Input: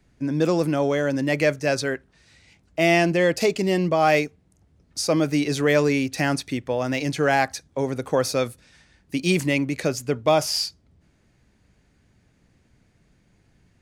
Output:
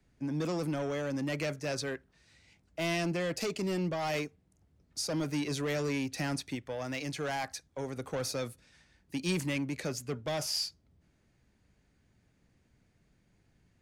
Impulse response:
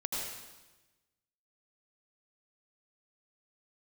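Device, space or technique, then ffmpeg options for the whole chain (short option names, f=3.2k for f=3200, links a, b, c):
one-band saturation: -filter_complex "[0:a]asettb=1/sr,asplit=3[a][b][c];[a]atrim=end=6.554[d];[b]atrim=start=6.55:end=7.97,asetpts=PTS-STARTPTS,afade=t=in:d=0.004:c=qsin,afade=t=out:st=1.416:d=0.004:c=qsin,equalizer=f=210:w=0.43:g=-4[e];[c]atrim=start=7.966[f];[d][e]acrossfade=d=0.004:c1=hsin:c2=qsin[g];[g][f]acrossfade=d=0.004:c1=qsin:c2=hsin,acrossover=split=200|3100[h][i][j];[i]asoftclip=type=tanh:threshold=-23.5dB[k];[h][k][j]amix=inputs=3:normalize=0,volume=-8dB"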